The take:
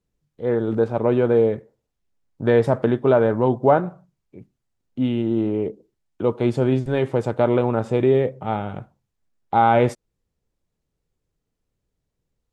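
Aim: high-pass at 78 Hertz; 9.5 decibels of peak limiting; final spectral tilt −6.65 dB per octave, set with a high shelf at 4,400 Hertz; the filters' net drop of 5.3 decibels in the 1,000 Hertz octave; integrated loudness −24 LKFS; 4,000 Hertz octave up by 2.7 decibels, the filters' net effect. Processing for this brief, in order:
high-pass filter 78 Hz
parametric band 1,000 Hz −7.5 dB
parametric band 4,000 Hz +6.5 dB
high-shelf EQ 4,400 Hz −5 dB
level +2 dB
brickwall limiter −13 dBFS

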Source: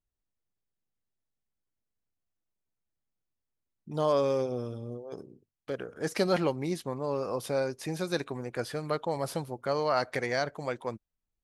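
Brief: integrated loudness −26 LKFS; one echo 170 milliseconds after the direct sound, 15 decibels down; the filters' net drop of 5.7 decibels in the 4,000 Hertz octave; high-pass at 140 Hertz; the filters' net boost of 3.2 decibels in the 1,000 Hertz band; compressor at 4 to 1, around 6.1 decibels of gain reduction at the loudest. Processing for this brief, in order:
high-pass filter 140 Hz
parametric band 1,000 Hz +4.5 dB
parametric band 4,000 Hz −7 dB
downward compressor 4 to 1, threshold −27 dBFS
single-tap delay 170 ms −15 dB
level +8 dB

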